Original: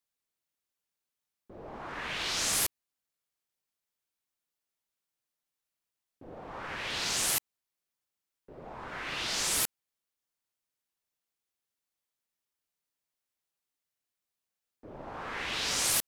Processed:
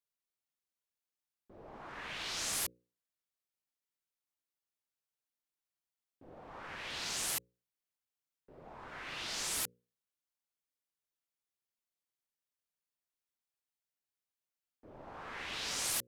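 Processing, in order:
mains-hum notches 60/120/180/240/300/360/420/480/540 Hz
level −7 dB

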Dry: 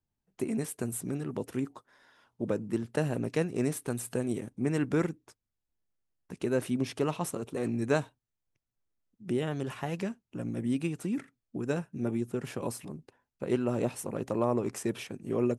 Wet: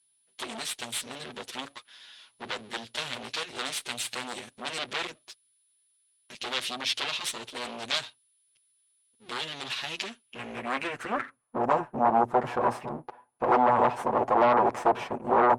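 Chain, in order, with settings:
lower of the sound and its delayed copy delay 8.2 ms
low-shelf EQ 330 Hz +8.5 dB
in parallel at −4 dB: sine wavefolder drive 15 dB, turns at −11.5 dBFS
on the sum: steady tone 10,000 Hz −55 dBFS
band-pass filter sweep 3,700 Hz → 880 Hz, 0:10.09–0:11.74
level +5 dB

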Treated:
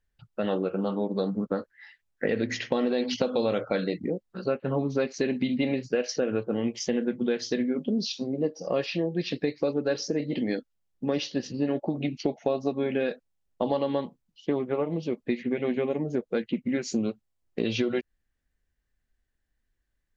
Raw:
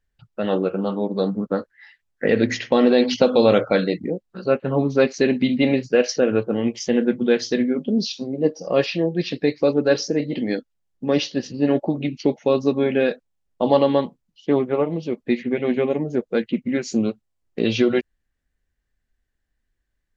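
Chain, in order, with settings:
0:11.94–0:12.70: parametric band 700 Hz +5.5 dB → +14.5 dB 0.4 octaves
downward compressor 4 to 1, threshold −21 dBFS, peak gain reduction 10 dB
level −2.5 dB

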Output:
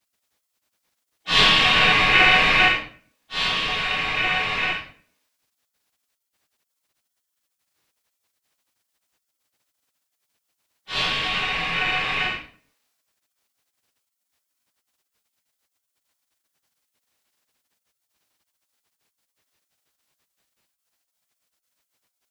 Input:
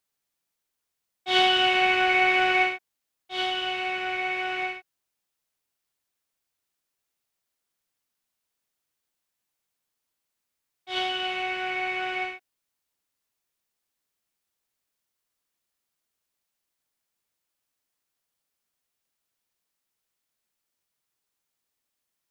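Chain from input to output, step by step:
high-shelf EQ 5,400 Hz −8 dB
rectangular room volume 47 cubic metres, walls mixed, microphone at 1.7 metres
gate on every frequency bin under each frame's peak −15 dB weak
level +7.5 dB

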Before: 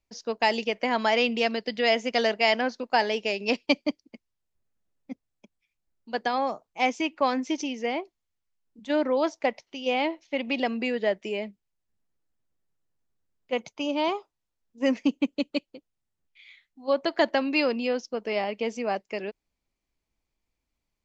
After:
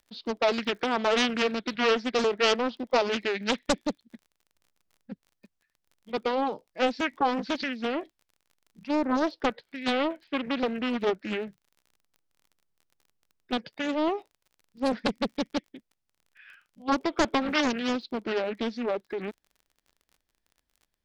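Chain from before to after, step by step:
formants moved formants −5 semitones
surface crackle 37 per second −46 dBFS
highs frequency-modulated by the lows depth 0.84 ms

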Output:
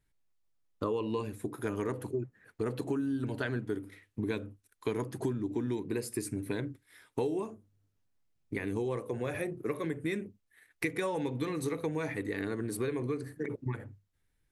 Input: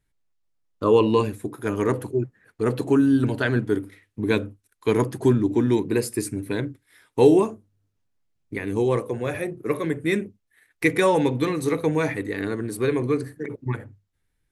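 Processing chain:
downward compressor 6 to 1, threshold −28 dBFS, peak gain reduction 17 dB
level −2.5 dB

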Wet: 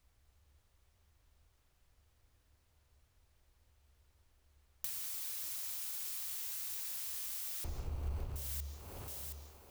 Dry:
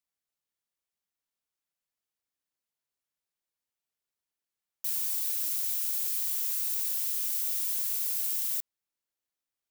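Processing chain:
0:07.64–0:08.36: running median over 25 samples
spectral tilt −2.5 dB per octave
feedback echo with a high-pass in the loop 721 ms, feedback 31%, high-pass 220 Hz, level −22 dB
in parallel at −10.5 dB: asymmetric clip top −41.5 dBFS
on the sum: low shelf with overshoot 120 Hz +12.5 dB, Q 1.5
downward compressor 8 to 1, threshold −55 dBFS, peak gain reduction 28.5 dB
on a send at −8 dB: convolution reverb RT60 0.55 s, pre-delay 135 ms
on the sum: level +15 dB

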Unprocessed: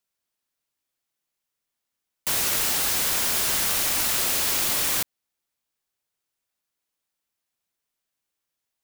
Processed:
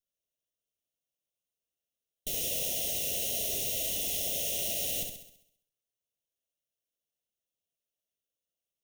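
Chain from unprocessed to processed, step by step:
lower of the sound and its delayed copy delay 0.41 ms
elliptic band-stop filter 680–2,100 Hz, stop band 70 dB
formants moved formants +4 semitones
on a send: flutter between parallel walls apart 11.4 metres, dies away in 0.71 s
on the sum: level −8 dB

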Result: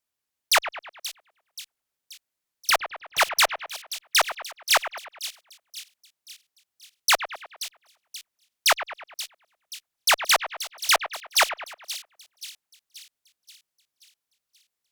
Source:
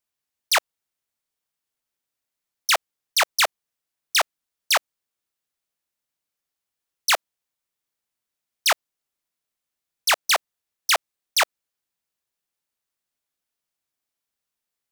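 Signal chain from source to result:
0:02.70–0:03.21: running median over 9 samples
on a send: echo with a time of its own for lows and highs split 2,900 Hz, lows 103 ms, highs 530 ms, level −11.5 dB
on the sum: harmonic generator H 6 −38 dB, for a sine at −9 dBFS

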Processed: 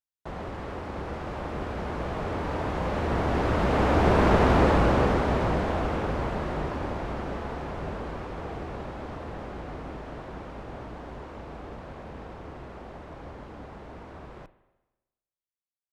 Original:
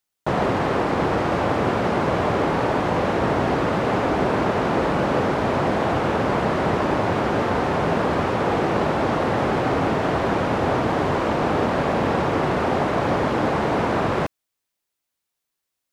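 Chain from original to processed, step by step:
sub-octave generator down 2 octaves, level +2 dB
source passing by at 0:04.42, 13 m/s, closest 8 metres
spring reverb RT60 1.1 s, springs 38/51 ms, chirp 30 ms, DRR 15 dB

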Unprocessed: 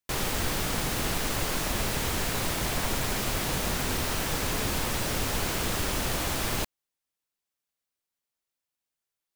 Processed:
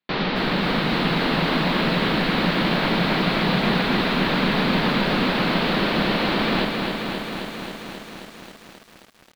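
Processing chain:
elliptic low-pass filter 4,200 Hz, stop band 50 dB
low shelf with overshoot 130 Hz −11 dB, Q 3
delay with a low-pass on its return 73 ms, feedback 75%, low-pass 530 Hz, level −14 dB
feedback echo at a low word length 267 ms, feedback 80%, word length 9 bits, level −5 dB
level +7.5 dB

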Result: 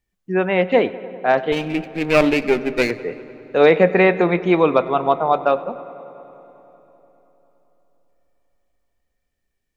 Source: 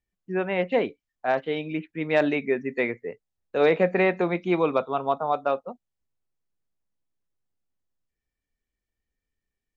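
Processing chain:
0:01.52–0:02.91: lower of the sound and its delayed copy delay 0.34 ms
feedback echo with a low-pass in the loop 98 ms, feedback 84%, low-pass 3,500 Hz, level −19 dB
on a send at −22 dB: convolution reverb RT60 4.1 s, pre-delay 40 ms
on the sum: level +7.5 dB

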